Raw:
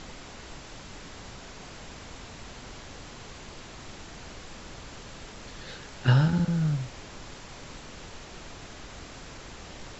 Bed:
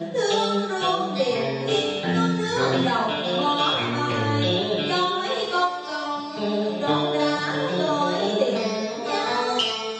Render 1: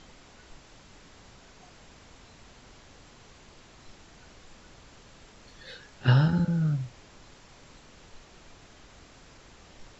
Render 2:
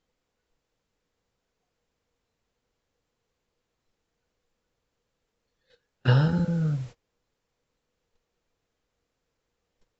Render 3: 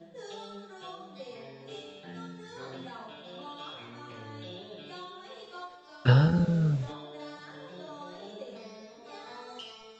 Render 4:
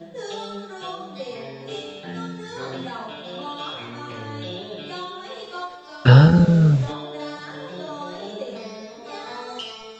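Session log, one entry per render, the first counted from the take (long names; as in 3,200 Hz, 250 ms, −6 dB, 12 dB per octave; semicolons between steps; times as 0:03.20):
noise reduction from a noise print 9 dB
noise gate −40 dBFS, range −28 dB; parametric band 480 Hz +11 dB 0.21 octaves
mix in bed −21.5 dB
level +11 dB; brickwall limiter −1 dBFS, peak gain reduction 3 dB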